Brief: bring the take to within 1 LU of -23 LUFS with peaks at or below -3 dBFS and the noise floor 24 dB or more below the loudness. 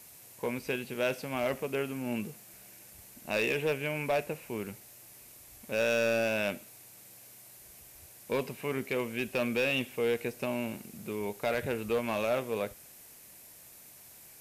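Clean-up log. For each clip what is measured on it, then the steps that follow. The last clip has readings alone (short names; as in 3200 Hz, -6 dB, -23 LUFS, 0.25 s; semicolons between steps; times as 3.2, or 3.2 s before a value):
clipped 0.9%; flat tops at -23.0 dBFS; noise floor -53 dBFS; noise floor target -57 dBFS; loudness -32.5 LUFS; peak -23.0 dBFS; loudness target -23.0 LUFS
-> clip repair -23 dBFS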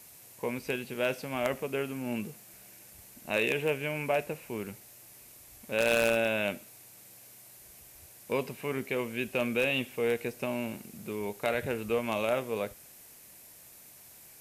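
clipped 0.0%; noise floor -53 dBFS; noise floor target -56 dBFS
-> denoiser 6 dB, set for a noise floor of -53 dBFS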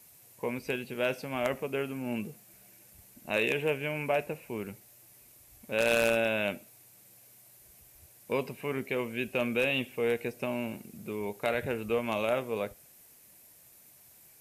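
noise floor -58 dBFS; loudness -31.5 LUFS; peak -14.0 dBFS; loudness target -23.0 LUFS
-> gain +8.5 dB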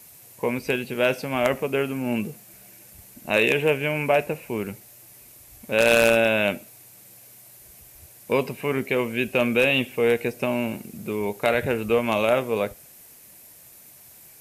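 loudness -23.0 LUFS; peak -5.5 dBFS; noise floor -49 dBFS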